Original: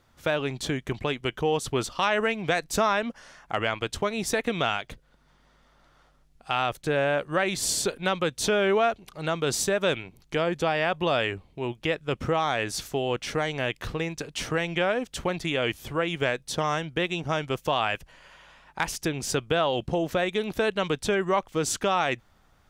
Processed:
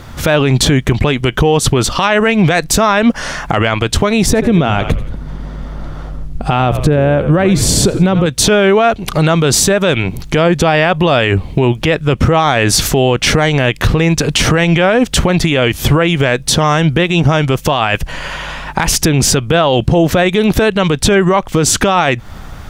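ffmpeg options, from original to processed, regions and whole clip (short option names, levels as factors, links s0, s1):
-filter_complex "[0:a]asettb=1/sr,asplit=3[s0][s1][s2];[s0]atrim=end=4.264[s3];[s1]atrim=start=4.26:end=8.26,asetpts=PTS-STARTPTS,afade=t=in:d=0.004:c=qsin,afade=t=out:st=3.996:d=0.004:c=qsin,tiltshelf=f=750:g=7,bandreject=f=60:t=h:w=6,bandreject=f=120:t=h:w=6,asplit=4[s4][s5][s6][s7];[s5]adelay=86,afreqshift=-64,volume=0.158[s8];[s6]adelay=172,afreqshift=-128,volume=0.0569[s9];[s7]adelay=258,afreqshift=-192,volume=0.0207[s10];[s4][s8][s9][s10]amix=inputs=4:normalize=0,atrim=end_sample=176400[s11];[s2]atrim=start=8.256[s12];[s3][s11]acrossfade=d=0.004:c1=hsin:c2=qsin[s13];[s13][s12]acrossfade=d=0.004:c1=qsin:c2=hsin,bass=f=250:g=6,treble=f=4000:g=-1,acompressor=threshold=0.0251:ratio=6,alimiter=level_in=28.2:limit=0.891:release=50:level=0:latency=1,volume=0.891"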